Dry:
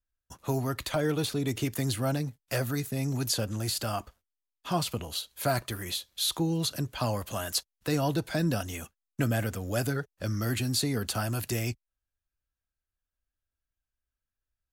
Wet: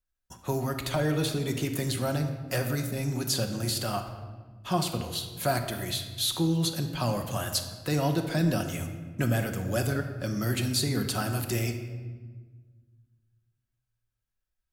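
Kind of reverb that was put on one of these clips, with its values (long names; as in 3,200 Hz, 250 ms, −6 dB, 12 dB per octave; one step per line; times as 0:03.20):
rectangular room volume 1,300 cubic metres, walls mixed, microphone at 1 metre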